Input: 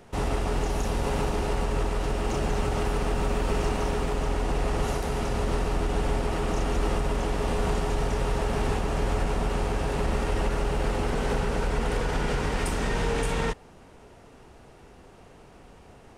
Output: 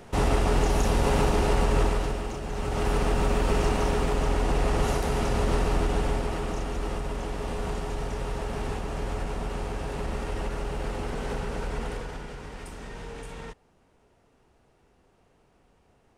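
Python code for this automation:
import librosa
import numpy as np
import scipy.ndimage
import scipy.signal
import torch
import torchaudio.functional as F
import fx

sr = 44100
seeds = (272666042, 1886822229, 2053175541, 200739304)

y = fx.gain(x, sr, db=fx.line((1.86, 4.0), (2.41, -8.0), (2.91, 2.0), (5.78, 2.0), (6.7, -5.0), (11.83, -5.0), (12.31, -13.0)))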